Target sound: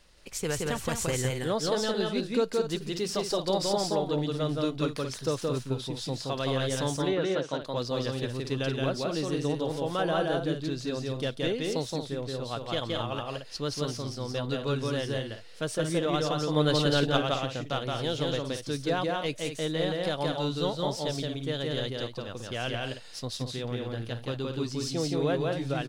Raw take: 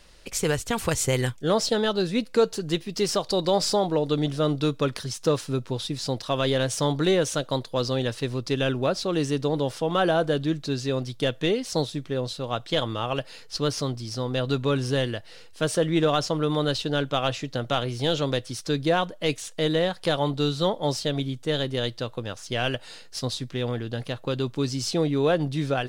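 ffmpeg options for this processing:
ffmpeg -i in.wav -filter_complex "[0:a]asettb=1/sr,asplit=3[link_01][link_02][link_03];[link_01]atrim=end=6.964[link_04];[link_02]atrim=start=6.96:end=7.62,asetpts=PTS-STARTPTS,afade=type=in:duration=0.004:curve=qsin,afade=type=out:start_time=0.656:duration=0.004:curve=qsin,highpass=170,lowpass=3500[link_05];[link_03]atrim=start=7.616[link_06];[link_04][link_05]acrossfade=duration=0.004:curve1=hsin:curve2=qsin[link_07];[link_07][link_06]acrossfade=duration=0.004:curve1=qsin:curve2=hsin,asettb=1/sr,asplit=3[link_08][link_09][link_10];[link_08]atrim=end=16.564[link_11];[link_09]atrim=start=16.56:end=17.17,asetpts=PTS-STARTPTS,afade=type=in:duration=0.004:curve=qsin,afade=type=out:start_time=0.606:duration=0.004:curve=qsin,acontrast=59[link_12];[link_10]atrim=start=17.166[link_13];[link_11][link_12]acrossfade=duration=0.004:curve1=hsin:curve2=qsin[link_14];[link_14][link_13]acrossfade=duration=0.004:curve1=qsin:curve2=hsin,aecho=1:1:172|224.5:0.794|0.355,volume=-7dB" out.wav

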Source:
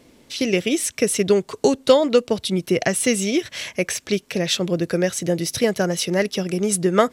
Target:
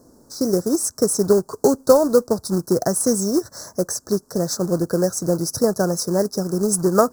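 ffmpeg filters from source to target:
ffmpeg -i in.wav -af "acrusher=bits=3:mode=log:mix=0:aa=0.000001,asuperstop=centerf=2700:order=8:qfactor=0.76,volume=1dB" out.wav

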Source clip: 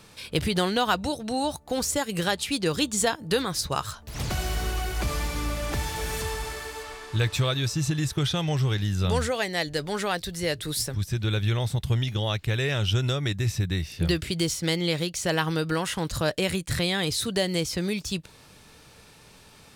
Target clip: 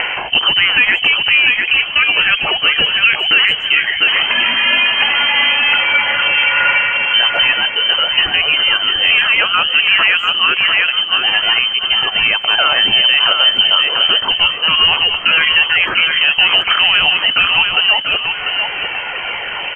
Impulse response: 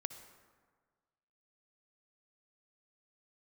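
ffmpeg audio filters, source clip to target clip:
-filter_complex "[0:a]asplit=2[link_01][link_02];[link_02]acompressor=threshold=-38dB:ratio=5,volume=2dB[link_03];[link_01][link_03]amix=inputs=2:normalize=0,asplit=2[link_04][link_05];[link_05]highpass=frequency=720:poles=1,volume=17dB,asoftclip=type=tanh:threshold=-7.5dB[link_06];[link_04][link_06]amix=inputs=2:normalize=0,lowpass=frequency=1500:poles=1,volume=-6dB,acompressor=mode=upward:threshold=-22dB:ratio=2.5,aphaser=in_gain=1:out_gain=1:delay=2.9:decay=0.43:speed=0.3:type=sinusoidal,asplit=2[link_07][link_08];[link_08]aecho=0:1:695|1390|2085|2780:0.501|0.17|0.0579|0.0197[link_09];[link_07][link_09]amix=inputs=2:normalize=0,lowpass=frequency=2700:width_type=q:width=0.5098,lowpass=frequency=2700:width_type=q:width=0.6013,lowpass=frequency=2700:width_type=q:width=0.9,lowpass=frequency=2700:width_type=q:width=2.563,afreqshift=-3200,asplit=2[link_10][link_11];[link_11]adelay=150,highpass=300,lowpass=3400,asoftclip=type=hard:threshold=-11dB,volume=-23dB[link_12];[link_10][link_12]amix=inputs=2:normalize=0,alimiter=level_in=9.5dB:limit=-1dB:release=50:level=0:latency=1,volume=-1dB"

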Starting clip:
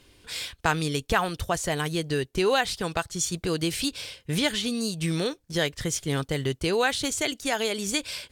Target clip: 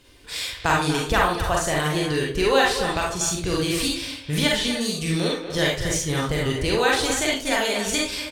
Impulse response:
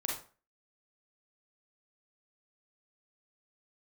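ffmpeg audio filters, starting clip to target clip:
-filter_complex "[0:a]asplit=2[link_01][link_02];[link_02]adelay=240,highpass=300,lowpass=3400,asoftclip=type=hard:threshold=-18.5dB,volume=-8dB[link_03];[link_01][link_03]amix=inputs=2:normalize=0[link_04];[1:a]atrim=start_sample=2205[link_05];[link_04][link_05]afir=irnorm=-1:irlink=0,asubboost=boost=2.5:cutoff=120,volume=2dB"

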